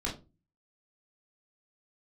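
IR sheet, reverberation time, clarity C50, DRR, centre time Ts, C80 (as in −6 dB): 0.30 s, 10.0 dB, −4.5 dB, 23 ms, 16.0 dB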